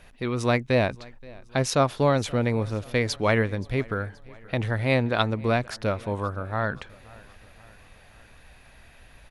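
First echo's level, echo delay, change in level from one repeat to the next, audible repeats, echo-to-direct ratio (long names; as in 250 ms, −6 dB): −23.5 dB, 526 ms, −5.5 dB, 3, −22.0 dB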